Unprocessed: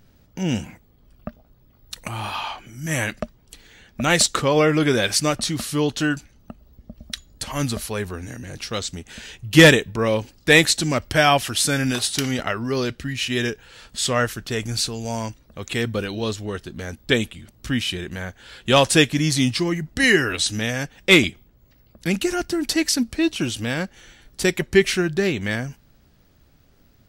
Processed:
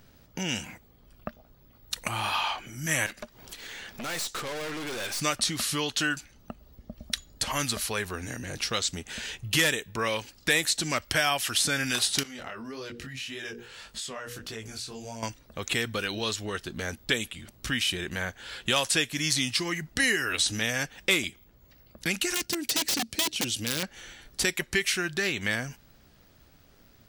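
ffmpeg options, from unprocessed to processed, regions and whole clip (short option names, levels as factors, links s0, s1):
-filter_complex "[0:a]asettb=1/sr,asplit=3[s0][s1][s2];[s0]atrim=end=3.064[s3];[s1]atrim=start=3.06:end=5.21,asetpts=PTS-STARTPTS,afade=t=in:d=0.004:c=qsin,afade=t=out:st=2.146:d=0.004:c=qsin,lowshelf=f=200:g=-9.5,acompressor=mode=upward:threshold=0.0355:ratio=2.5:attack=3.2:release=140:knee=2.83:detection=peak,aeval=exprs='(tanh(44.7*val(0)+0.6)-tanh(0.6))/44.7':c=same[s4];[s2]atrim=start=5.206[s5];[s3][s4]acrossfade=d=0.004:c1=hsin:c2=qsin[s6];[s6][s5]acrossfade=d=0.004:c1=qsin:c2=hsin,asettb=1/sr,asplit=3[s7][s8][s9];[s7]atrim=end=12.234[s10];[s8]atrim=start=12.23:end=15.23,asetpts=PTS-STARTPTS,afade=t=in:d=0.004:c=qsin,afade=t=out:st=2.996:d=0.004:c=qsin,bandreject=f=60:t=h:w=6,bandreject=f=120:t=h:w=6,bandreject=f=180:t=h:w=6,bandreject=f=240:t=h:w=6,bandreject=f=300:t=h:w=6,bandreject=f=360:t=h:w=6,bandreject=f=420:t=h:w=6,bandreject=f=480:t=h:w=6,bandreject=f=540:t=h:w=6,acompressor=threshold=0.0251:ratio=10:attack=3.2:release=140:knee=1:detection=peak,flanger=delay=18:depth=5.4:speed=1.7[s11];[s9]atrim=start=15.226[s12];[s10][s11]acrossfade=d=0.004:c1=hsin:c2=qsin[s13];[s13][s12]acrossfade=d=0.004:c1=qsin:c2=hsin,asettb=1/sr,asplit=3[s14][s15][s16];[s14]atrim=end=22.344[s17];[s15]atrim=start=22.34:end=23.83,asetpts=PTS-STARTPTS,afade=t=in:d=0.004:c=qsin,afade=t=out:st=1.486:d=0.004:c=qsin,aeval=exprs='(mod(6.31*val(0)+1,2)-1)/6.31':c=same,highpass=85,equalizer=f=1200:w=0.72:g=-11[s18];[s16]atrim=start=23.826[s19];[s17][s18]acrossfade=d=0.004:c1=hsin:c2=qsin[s20];[s20][s19]acrossfade=d=0.004:c1=qsin:c2=hsin,lowshelf=f=360:g=-6,acrossover=split=1100|6900[s21][s22][s23];[s21]acompressor=threshold=0.0178:ratio=4[s24];[s22]acompressor=threshold=0.0398:ratio=4[s25];[s23]acompressor=threshold=0.02:ratio=4[s26];[s24][s25][s26]amix=inputs=3:normalize=0,volume=1.33"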